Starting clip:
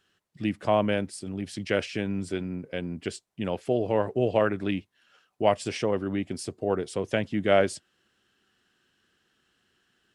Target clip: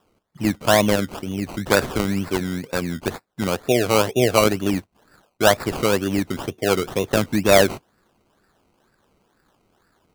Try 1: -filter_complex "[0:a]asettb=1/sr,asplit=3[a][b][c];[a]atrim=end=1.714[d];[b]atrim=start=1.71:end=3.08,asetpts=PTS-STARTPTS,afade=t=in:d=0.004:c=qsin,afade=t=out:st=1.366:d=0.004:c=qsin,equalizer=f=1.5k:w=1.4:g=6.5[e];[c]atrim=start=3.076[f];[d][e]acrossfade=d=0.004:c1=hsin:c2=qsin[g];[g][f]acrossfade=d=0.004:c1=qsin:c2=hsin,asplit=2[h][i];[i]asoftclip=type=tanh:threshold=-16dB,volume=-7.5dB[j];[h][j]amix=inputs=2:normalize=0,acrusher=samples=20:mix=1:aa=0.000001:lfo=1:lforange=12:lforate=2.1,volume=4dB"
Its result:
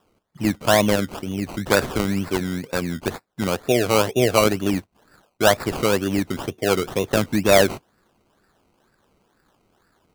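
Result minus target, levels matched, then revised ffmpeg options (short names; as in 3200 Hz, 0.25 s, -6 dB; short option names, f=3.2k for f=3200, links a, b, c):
soft clip: distortion +14 dB
-filter_complex "[0:a]asettb=1/sr,asplit=3[a][b][c];[a]atrim=end=1.714[d];[b]atrim=start=1.71:end=3.08,asetpts=PTS-STARTPTS,afade=t=in:d=0.004:c=qsin,afade=t=out:st=1.366:d=0.004:c=qsin,equalizer=f=1.5k:w=1.4:g=6.5[e];[c]atrim=start=3.076[f];[d][e]acrossfade=d=0.004:c1=hsin:c2=qsin[g];[g][f]acrossfade=d=0.004:c1=qsin:c2=hsin,asplit=2[h][i];[i]asoftclip=type=tanh:threshold=-6.5dB,volume=-7.5dB[j];[h][j]amix=inputs=2:normalize=0,acrusher=samples=20:mix=1:aa=0.000001:lfo=1:lforange=12:lforate=2.1,volume=4dB"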